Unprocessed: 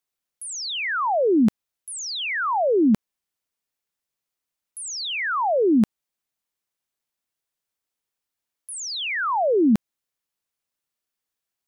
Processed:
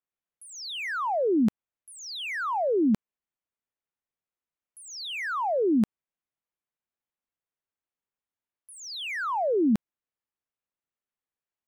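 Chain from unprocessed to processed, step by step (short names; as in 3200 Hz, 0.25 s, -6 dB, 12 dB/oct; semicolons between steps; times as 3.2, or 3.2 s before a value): Wiener smoothing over 9 samples; gain -5 dB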